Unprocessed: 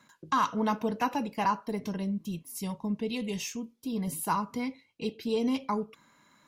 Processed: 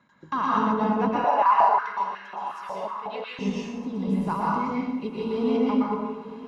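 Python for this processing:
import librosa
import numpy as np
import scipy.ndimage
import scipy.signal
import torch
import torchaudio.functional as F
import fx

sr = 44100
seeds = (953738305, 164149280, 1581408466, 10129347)

y = scipy.signal.sosfilt(scipy.signal.butter(2, 4600.0, 'lowpass', fs=sr, output='sos'), x)
y = fx.high_shelf(y, sr, hz=2800.0, db=-10.5)
y = fx.echo_diffused(y, sr, ms=1027, feedback_pct=41, wet_db=-15)
y = fx.rev_plate(y, sr, seeds[0], rt60_s=1.2, hf_ratio=0.7, predelay_ms=105, drr_db=-5.5)
y = fx.filter_held_highpass(y, sr, hz=5.5, low_hz=610.0, high_hz=1700.0, at=(1.24, 3.39))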